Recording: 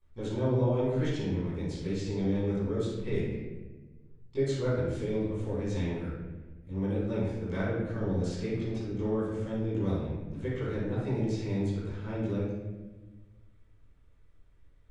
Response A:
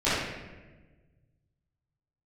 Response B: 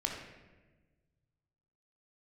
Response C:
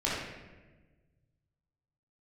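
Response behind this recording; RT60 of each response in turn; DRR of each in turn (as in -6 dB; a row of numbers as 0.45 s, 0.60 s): A; 1.3 s, 1.3 s, 1.3 s; -15.5 dB, -0.5 dB, -8.5 dB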